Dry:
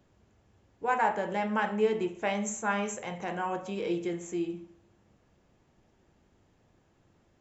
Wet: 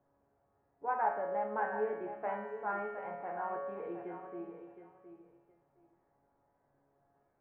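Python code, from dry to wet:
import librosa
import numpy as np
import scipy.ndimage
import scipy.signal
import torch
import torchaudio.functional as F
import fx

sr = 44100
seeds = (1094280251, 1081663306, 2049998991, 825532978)

p1 = scipy.signal.sosfilt(scipy.signal.butter(4, 1900.0, 'lowpass', fs=sr, output='sos'), x)
p2 = fx.peak_eq(p1, sr, hz=760.0, db=13.5, octaves=2.0)
p3 = fx.comb_fb(p2, sr, f0_hz=140.0, decay_s=1.3, harmonics='all', damping=0.0, mix_pct=90)
y = p3 + fx.echo_feedback(p3, sr, ms=715, feedback_pct=18, wet_db=-10.5, dry=0)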